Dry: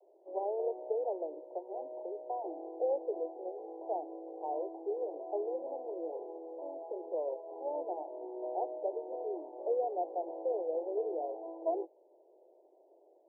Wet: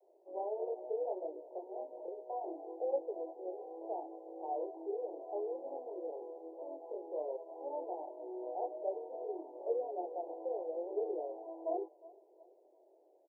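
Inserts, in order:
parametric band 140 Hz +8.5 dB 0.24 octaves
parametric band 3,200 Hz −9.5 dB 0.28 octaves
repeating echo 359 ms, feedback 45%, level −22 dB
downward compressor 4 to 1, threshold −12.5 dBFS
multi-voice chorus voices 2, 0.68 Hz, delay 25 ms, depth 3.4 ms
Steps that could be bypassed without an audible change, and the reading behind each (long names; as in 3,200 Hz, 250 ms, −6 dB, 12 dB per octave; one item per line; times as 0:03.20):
parametric band 140 Hz: nothing at its input below 270 Hz
parametric band 3,200 Hz: nothing at its input above 1,000 Hz
downward compressor, threshold −12.5 dBFS: peak of its input −22.5 dBFS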